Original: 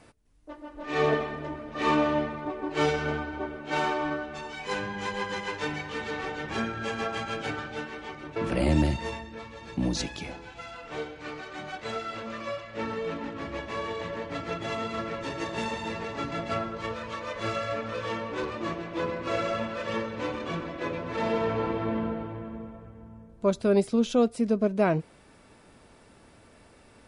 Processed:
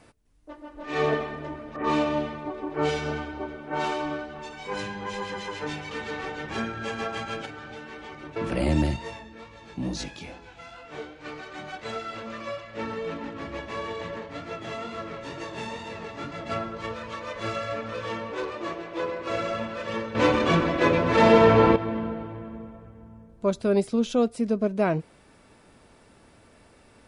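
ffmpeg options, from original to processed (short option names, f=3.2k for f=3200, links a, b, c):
-filter_complex "[0:a]asettb=1/sr,asplit=3[a][b][c];[a]atrim=end=1.764[d];[b]atrim=start=1.76:end=5.91,asetpts=PTS-STARTPTS,afade=t=in:d=0.004:c=qsin,afade=t=out:st=4.146:d=0.004:c=qsin,acrossover=split=1800[e][f];[f]adelay=80[g];[e][g]amix=inputs=2:normalize=0,atrim=end_sample=183015[h];[c]atrim=start=5.906[i];[d][h]acrossfade=d=0.004:c1=hsin:c2=qsin[j];[j][i]acrossfade=d=0.004:c1=qsin:c2=hsin,asettb=1/sr,asplit=3[k][l][m];[k]atrim=end=7.454[n];[l]atrim=start=7.45:end=8.12,asetpts=PTS-STARTPTS,afade=t=in:d=0.004:c=qsin,afade=t=out:st=0.666:d=0.004:c=qsin,acompressor=threshold=-36dB:ratio=6:attack=3.2:release=140:knee=1:detection=peak[o];[m]atrim=start=8.116[p];[n][o]acrossfade=d=0.004:c1=hsin:c2=qsin[q];[q][p]acrossfade=d=0.004:c1=qsin:c2=hsin,asplit=3[r][s][t];[r]afade=t=out:st=8.96:d=0.02[u];[s]flanger=delay=19:depth=4.7:speed=2.3,afade=t=in:st=8.96:d=0.02,afade=t=out:st=11.24:d=0.02[v];[t]afade=t=in:st=11.24:d=0.02[w];[u][v][w]amix=inputs=3:normalize=0,asplit=3[x][y][z];[x]afade=t=out:st=14.18:d=0.02[aa];[y]flanger=delay=19.5:depth=6.1:speed=2.2,afade=t=in:st=14.18:d=0.02,afade=t=out:st=16.45:d=0.02[ab];[z]afade=t=in:st=16.45:d=0.02[ac];[aa][ab][ac]amix=inputs=3:normalize=0,asettb=1/sr,asplit=3[ad][ae][af];[ad]atrim=end=18.314[ag];[ae]atrim=start=18.31:end=19.3,asetpts=PTS-STARTPTS,afade=t=in:d=0.004:c=qsin,afade=t=out:st=0.986:d=0.004:c=qsin,lowshelf=f=300:t=q:w=1.5:g=-6.5[ah];[af]atrim=start=19.296[ai];[ag][ah]acrossfade=d=0.004:c1=hsin:c2=qsin[aj];[aj][ai]acrossfade=d=0.004:c1=qsin:c2=hsin,asplit=3[ak][al][am];[ak]atrim=end=20.152[an];[al]atrim=start=20.148:end=21.762,asetpts=PTS-STARTPTS,volume=11.5dB[ao];[am]atrim=start=21.758[ap];[an][ao]acrossfade=d=0.004:c1=hsin:c2=hsin[aq];[aq][ap]acrossfade=d=0.004:c1=hsin:c2=hsin"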